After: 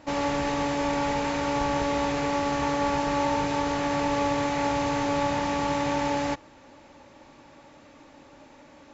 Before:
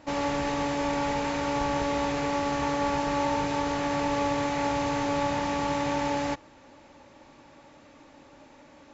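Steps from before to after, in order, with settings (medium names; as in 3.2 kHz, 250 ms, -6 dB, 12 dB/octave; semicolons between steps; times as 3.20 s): trim +1.5 dB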